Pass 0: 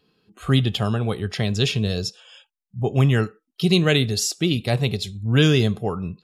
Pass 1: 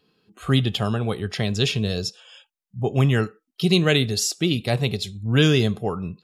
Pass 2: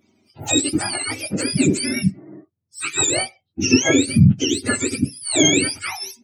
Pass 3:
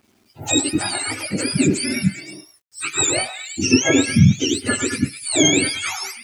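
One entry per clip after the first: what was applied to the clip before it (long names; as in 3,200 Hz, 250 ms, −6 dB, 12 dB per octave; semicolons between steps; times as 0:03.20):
low-shelf EQ 88 Hz −5 dB
frequency axis turned over on the octave scale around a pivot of 1,000 Hz; level +4 dB
echo through a band-pass that steps 104 ms, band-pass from 1,100 Hz, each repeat 0.7 octaves, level −4 dB; bit reduction 10 bits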